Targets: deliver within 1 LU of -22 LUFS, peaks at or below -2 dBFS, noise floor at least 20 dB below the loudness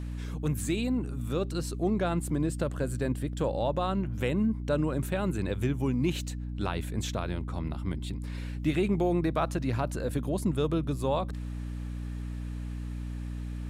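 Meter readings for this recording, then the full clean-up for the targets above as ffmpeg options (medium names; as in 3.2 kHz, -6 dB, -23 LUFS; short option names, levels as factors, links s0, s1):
hum 60 Hz; highest harmonic 300 Hz; hum level -33 dBFS; loudness -31.0 LUFS; peak level -15.5 dBFS; loudness target -22.0 LUFS
-> -af "bandreject=f=60:t=h:w=6,bandreject=f=120:t=h:w=6,bandreject=f=180:t=h:w=6,bandreject=f=240:t=h:w=6,bandreject=f=300:t=h:w=6"
-af "volume=2.82"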